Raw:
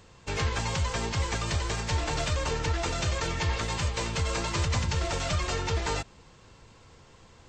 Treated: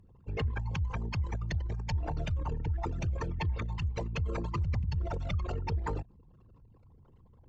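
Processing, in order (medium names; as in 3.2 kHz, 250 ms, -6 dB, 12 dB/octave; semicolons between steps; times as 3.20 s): resonances exaggerated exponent 3; Chebyshev shaper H 7 -38 dB, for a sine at -18 dBFS; trim -3 dB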